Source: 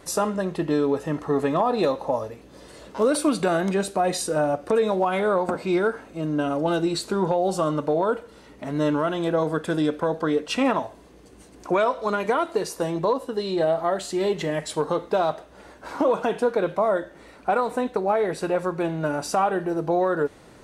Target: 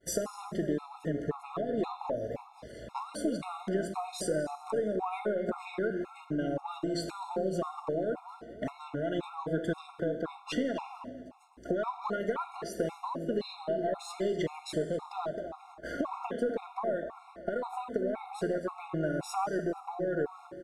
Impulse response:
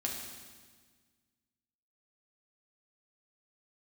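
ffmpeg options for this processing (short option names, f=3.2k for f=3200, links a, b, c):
-filter_complex "[0:a]agate=range=-33dB:threshold=-40dB:ratio=3:detection=peak,highshelf=f=3.5k:g=-6.5,acompressor=threshold=-30dB:ratio=10,asplit=2[a][b];[b]adelay=250,lowpass=f=1.5k:p=1,volume=-8.5dB,asplit=2[c][d];[d]adelay=250,lowpass=f=1.5k:p=1,volume=0.38,asplit=2[e][f];[f]adelay=250,lowpass=f=1.5k:p=1,volume=0.38,asplit=2[g][h];[h]adelay=250,lowpass=f=1.5k:p=1,volume=0.38[i];[a][c][e][g][i]amix=inputs=5:normalize=0,aeval=exprs='0.158*(cos(1*acos(clip(val(0)/0.158,-1,1)))-cos(1*PI/2))+0.002*(cos(8*acos(clip(val(0)/0.158,-1,1)))-cos(8*PI/2))':c=same,asplit=2[j][k];[1:a]atrim=start_sample=2205,asetrate=41895,aresample=44100[l];[k][l]afir=irnorm=-1:irlink=0,volume=-9dB[m];[j][m]amix=inputs=2:normalize=0,afftfilt=real='re*gt(sin(2*PI*1.9*pts/sr)*(1-2*mod(floor(b*sr/1024/710),2)),0)':imag='im*gt(sin(2*PI*1.9*pts/sr)*(1-2*mod(floor(b*sr/1024/710),2)),0)':win_size=1024:overlap=0.75"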